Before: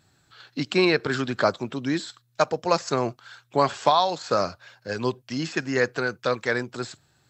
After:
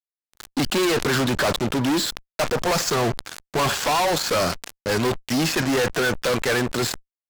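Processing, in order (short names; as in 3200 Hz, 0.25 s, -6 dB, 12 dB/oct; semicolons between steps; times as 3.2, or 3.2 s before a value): fuzz box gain 40 dB, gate -40 dBFS; sustainer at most 82 dB/s; gain -5.5 dB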